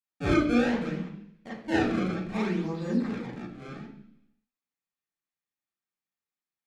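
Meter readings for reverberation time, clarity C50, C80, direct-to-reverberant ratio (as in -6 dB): 0.70 s, 4.0 dB, 7.0 dB, -8.5 dB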